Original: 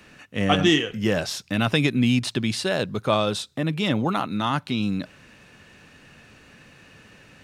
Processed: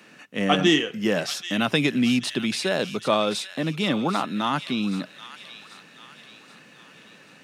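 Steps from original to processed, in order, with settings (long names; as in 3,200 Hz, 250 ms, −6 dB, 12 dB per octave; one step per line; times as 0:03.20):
high-pass filter 160 Hz 24 dB per octave
delay with a high-pass on its return 783 ms, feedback 49%, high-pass 1,800 Hz, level −10 dB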